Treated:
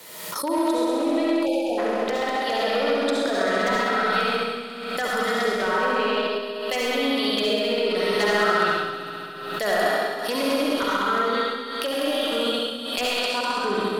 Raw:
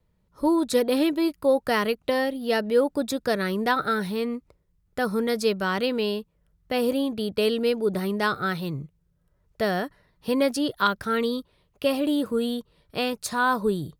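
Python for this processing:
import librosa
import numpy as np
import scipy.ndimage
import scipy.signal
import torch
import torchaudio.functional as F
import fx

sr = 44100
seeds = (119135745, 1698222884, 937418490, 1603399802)

p1 = fx.reverse_delay(x, sr, ms=114, wet_db=-11.5)
p2 = (np.mod(10.0 ** (13.5 / 20.0) * p1 + 1.0, 2.0) - 1.0) / 10.0 ** (13.5 / 20.0)
p3 = p1 + (p2 * librosa.db_to_amplitude(-3.0))
p4 = scipy.signal.sosfilt(scipy.signal.butter(2, 250.0, 'highpass', fs=sr, output='sos'), p3)
p5 = fx.tilt_eq(p4, sr, slope=4.0)
p6 = fx.env_lowpass_down(p5, sr, base_hz=480.0, full_db=-13.5)
p7 = p6 + fx.echo_heads(p6, sr, ms=66, heads='all three', feedback_pct=67, wet_db=-8.0, dry=0)
p8 = 10.0 ** (-12.0 / 20.0) * (np.abs((p7 / 10.0 ** (-12.0 / 20.0) + 3.0) % 4.0 - 2.0) - 1.0)
p9 = fx.level_steps(p8, sr, step_db=13)
p10 = fx.rev_freeverb(p9, sr, rt60_s=0.85, hf_ratio=1.0, predelay_ms=30, drr_db=-2.5)
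p11 = fx.spec_box(p10, sr, start_s=1.46, length_s=0.32, low_hz=940.0, high_hz=2300.0, gain_db=-29)
y = fx.pre_swell(p11, sr, db_per_s=45.0)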